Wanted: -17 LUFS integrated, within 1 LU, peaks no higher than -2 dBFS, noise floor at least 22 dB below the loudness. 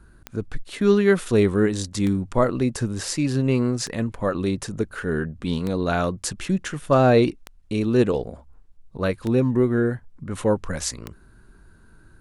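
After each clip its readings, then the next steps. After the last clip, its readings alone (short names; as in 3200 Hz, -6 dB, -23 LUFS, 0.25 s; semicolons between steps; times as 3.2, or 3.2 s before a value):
clicks 7; loudness -22.5 LUFS; peak -6.0 dBFS; loudness target -17.0 LUFS
-> de-click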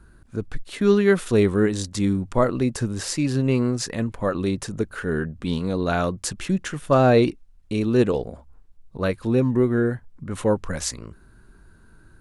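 clicks 0; loudness -22.5 LUFS; peak -6.0 dBFS; loudness target -17.0 LUFS
-> gain +5.5 dB; limiter -2 dBFS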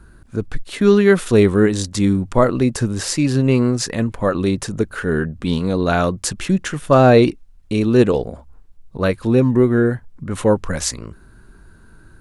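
loudness -17.5 LUFS; peak -2.0 dBFS; noise floor -46 dBFS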